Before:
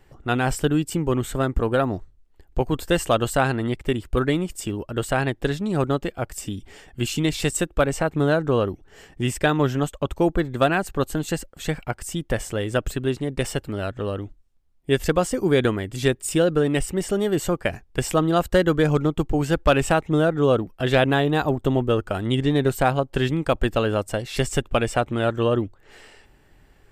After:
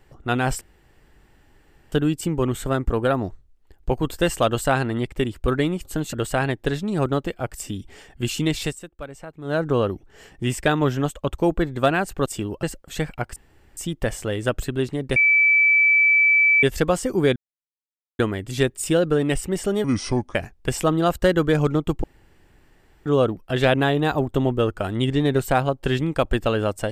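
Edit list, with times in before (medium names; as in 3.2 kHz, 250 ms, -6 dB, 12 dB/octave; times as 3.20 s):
0.61 s: insert room tone 1.31 s
4.54–4.91 s: swap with 11.04–11.32 s
7.39–8.39 s: dip -15.5 dB, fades 0.17 s
12.05 s: insert room tone 0.41 s
13.44–14.91 s: bleep 2.31 kHz -13 dBFS
15.64 s: insert silence 0.83 s
17.29–17.65 s: speed 71%
19.34–20.36 s: room tone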